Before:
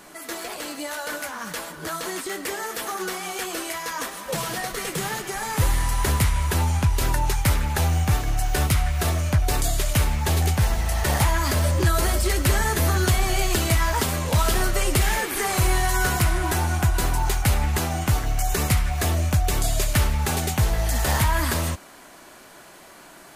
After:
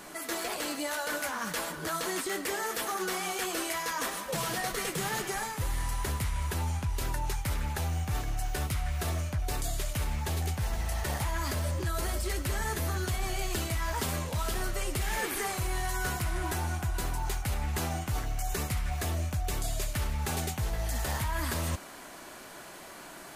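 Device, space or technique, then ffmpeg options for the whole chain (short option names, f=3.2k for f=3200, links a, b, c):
compression on the reversed sound: -af "areverse,acompressor=threshold=-29dB:ratio=6,areverse"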